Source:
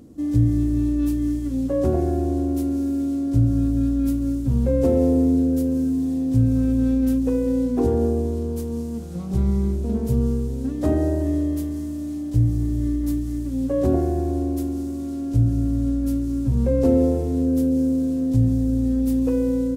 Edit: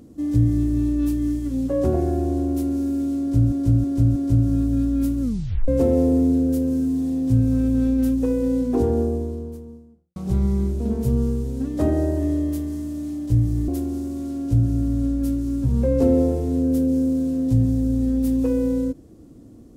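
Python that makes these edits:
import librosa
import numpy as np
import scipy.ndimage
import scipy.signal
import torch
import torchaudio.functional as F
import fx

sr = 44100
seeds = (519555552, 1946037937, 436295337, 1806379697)

y = fx.studio_fade_out(x, sr, start_s=7.81, length_s=1.39)
y = fx.edit(y, sr, fx.repeat(start_s=3.2, length_s=0.32, count=4),
    fx.tape_stop(start_s=4.26, length_s=0.46),
    fx.cut(start_s=12.72, length_s=1.79), tone=tone)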